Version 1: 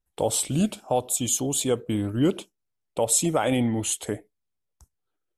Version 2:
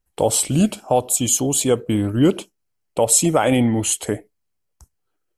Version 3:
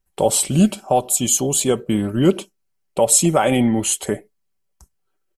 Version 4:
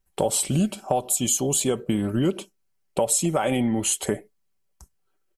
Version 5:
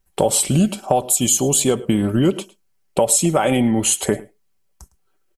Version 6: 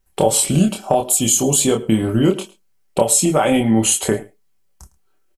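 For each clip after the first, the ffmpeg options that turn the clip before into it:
-af "bandreject=f=3600:w=9.5,volume=2.11"
-af "aecho=1:1:5.2:0.43"
-af "acompressor=threshold=0.1:ratio=4"
-af "aecho=1:1:107:0.0891,volume=2"
-filter_complex "[0:a]asplit=2[s0][s1];[s1]adelay=27,volume=0.631[s2];[s0][s2]amix=inputs=2:normalize=0"

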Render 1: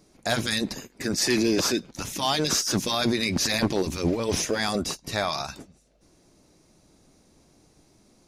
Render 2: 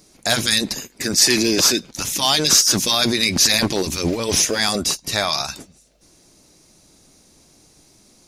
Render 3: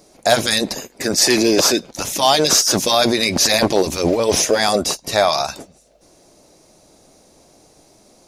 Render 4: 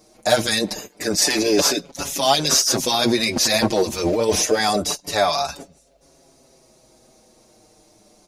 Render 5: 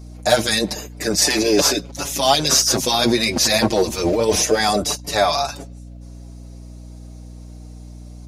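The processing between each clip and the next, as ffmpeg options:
-af "highshelf=f=2500:g=10,volume=1.41"
-af "equalizer=f=620:t=o:w=1.5:g=11.5,volume=0.891"
-filter_complex "[0:a]asplit=2[s0][s1];[s1]adelay=6,afreqshift=-0.27[s2];[s0][s2]amix=inputs=2:normalize=1"
-af "aeval=exprs='val(0)+0.0141*(sin(2*PI*60*n/s)+sin(2*PI*2*60*n/s)/2+sin(2*PI*3*60*n/s)/3+sin(2*PI*4*60*n/s)/4+sin(2*PI*5*60*n/s)/5)':c=same,volume=1.19"

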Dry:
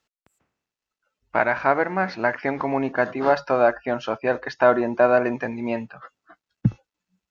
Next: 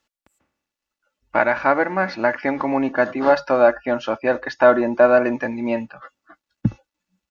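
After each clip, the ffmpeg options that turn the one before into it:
-af "aecho=1:1:3.5:0.41,volume=1.26"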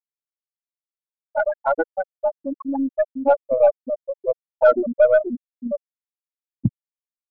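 -af "afftfilt=real='re*gte(hypot(re,im),0.708)':imag='im*gte(hypot(re,im),0.708)':win_size=1024:overlap=0.75,aeval=exprs='0.668*(cos(1*acos(clip(val(0)/0.668,-1,1)))-cos(1*PI/2))+0.0106*(cos(6*acos(clip(val(0)/0.668,-1,1)))-cos(6*PI/2))':c=same"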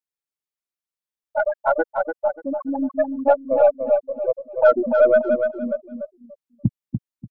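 -af "aecho=1:1:292|584|876:0.501|0.12|0.0289"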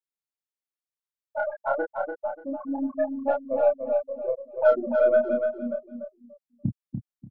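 -filter_complex "[0:a]asplit=2[s0][s1];[s1]adelay=29,volume=0.708[s2];[s0][s2]amix=inputs=2:normalize=0,volume=0.398"

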